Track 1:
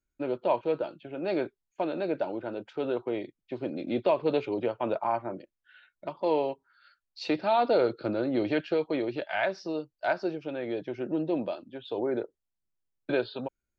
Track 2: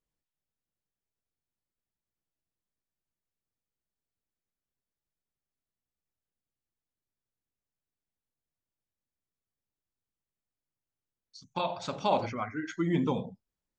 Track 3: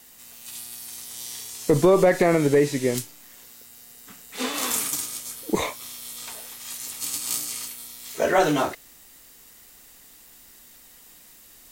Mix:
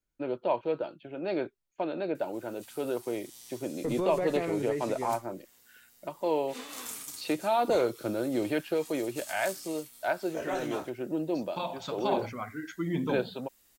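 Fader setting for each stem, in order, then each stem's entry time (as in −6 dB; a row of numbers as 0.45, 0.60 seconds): −2.0, −3.0, −14.5 decibels; 0.00, 0.00, 2.15 seconds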